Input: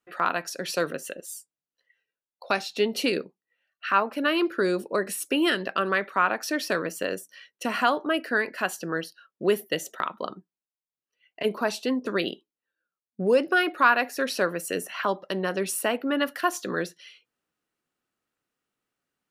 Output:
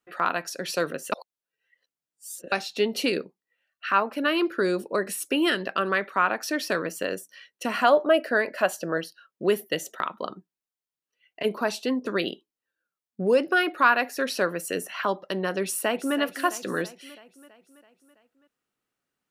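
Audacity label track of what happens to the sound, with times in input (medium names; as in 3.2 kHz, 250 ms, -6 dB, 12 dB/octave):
1.120000	2.520000	reverse
7.840000	8.980000	peaking EQ 600 Hz +12.5 dB 0.36 oct
15.630000	16.160000	echo throw 330 ms, feedback 60%, level -12.5 dB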